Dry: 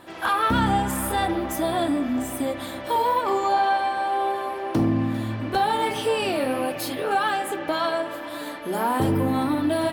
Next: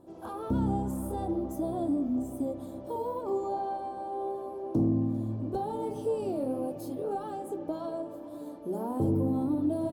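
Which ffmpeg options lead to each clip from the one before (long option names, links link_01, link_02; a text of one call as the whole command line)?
ffmpeg -i in.wav -af "firequalizer=gain_entry='entry(380,0);entry(1800,-29);entry(6100,-13)':delay=0.05:min_phase=1,volume=-4.5dB" out.wav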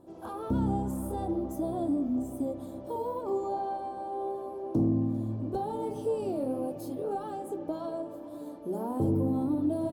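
ffmpeg -i in.wav -af anull out.wav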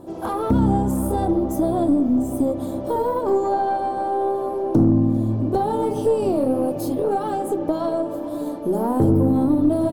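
ffmpeg -i in.wav -filter_complex "[0:a]asplit=2[link_01][link_02];[link_02]acompressor=threshold=-36dB:ratio=6,volume=1dB[link_03];[link_01][link_03]amix=inputs=2:normalize=0,aeval=exprs='0.178*(cos(1*acos(clip(val(0)/0.178,-1,1)))-cos(1*PI/2))+0.00891*(cos(4*acos(clip(val(0)/0.178,-1,1)))-cos(4*PI/2))':channel_layout=same,volume=8dB" out.wav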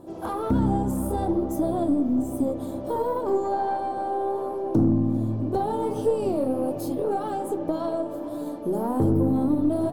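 ffmpeg -i in.wav -af "flanger=delay=5.9:depth=8.7:regen=84:speed=1.3:shape=sinusoidal" out.wav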